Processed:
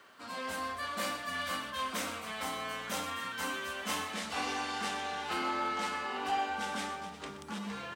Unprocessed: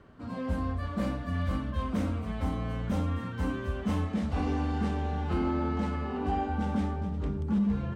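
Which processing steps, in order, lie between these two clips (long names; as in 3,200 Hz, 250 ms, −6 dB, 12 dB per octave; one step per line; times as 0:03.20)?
high-pass filter 1,000 Hz 6 dB per octave
spectral tilt +3 dB per octave
on a send: single-tap delay 124 ms −13 dB
on the sum: level +5.5 dB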